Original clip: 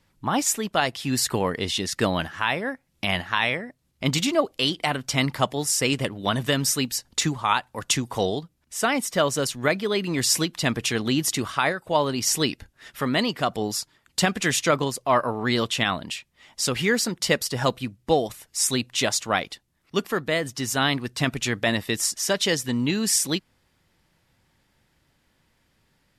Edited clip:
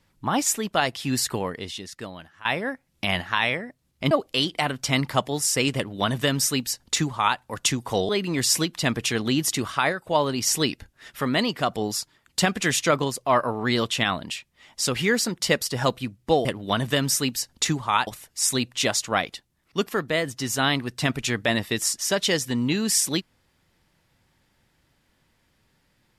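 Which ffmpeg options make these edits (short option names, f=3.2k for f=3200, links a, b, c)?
-filter_complex "[0:a]asplit=6[a][b][c][d][e][f];[a]atrim=end=2.45,asetpts=PTS-STARTPTS,afade=t=out:st=1.11:d=1.34:c=qua:silence=0.125893[g];[b]atrim=start=2.45:end=4.112,asetpts=PTS-STARTPTS,afade=t=in:d=0.004:c=hsin:silence=0.125893[h];[c]atrim=start=4.358:end=8.342[i];[d]atrim=start=9.888:end=18.252[j];[e]atrim=start=6.008:end=7.632[k];[f]atrim=start=18.248[l];[g][h]concat=n=2:v=0:a=1[m];[m][i]acrossfade=d=0.004:c1=hsin:c2=hsin[n];[n][j]acrossfade=d=0.004:c1=hsin:c2=hsin[o];[o][k]acrossfade=d=0.004:c1=hsin:c2=hsin[p];[p][l]acrossfade=d=0.004:c1=hsin:c2=hsin"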